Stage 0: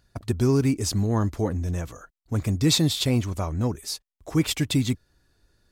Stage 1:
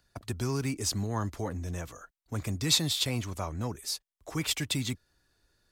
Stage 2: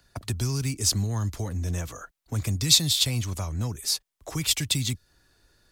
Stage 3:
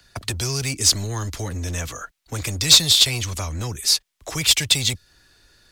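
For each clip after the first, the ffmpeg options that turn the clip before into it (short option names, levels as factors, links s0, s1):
-filter_complex "[0:a]lowshelf=f=460:g=-7,acrossover=split=190|570|7000[s0][s1][s2][s3];[s1]alimiter=level_in=2.11:limit=0.0631:level=0:latency=1,volume=0.473[s4];[s0][s4][s2][s3]amix=inputs=4:normalize=0,volume=0.794"
-filter_complex "[0:a]acrossover=split=160|3000[s0][s1][s2];[s1]acompressor=threshold=0.00631:ratio=6[s3];[s0][s3][s2]amix=inputs=3:normalize=0,volume=2.51"
-filter_complex "[0:a]acrossover=split=320|1600[s0][s1][s2];[s0]asoftclip=type=hard:threshold=0.0282[s3];[s2]asplit=2[s4][s5];[s5]highpass=f=720:p=1,volume=3.98,asoftclip=type=tanh:threshold=0.596[s6];[s4][s6]amix=inputs=2:normalize=0,lowpass=f=5400:p=1,volume=0.501[s7];[s3][s1][s7]amix=inputs=3:normalize=0,volume=1.68"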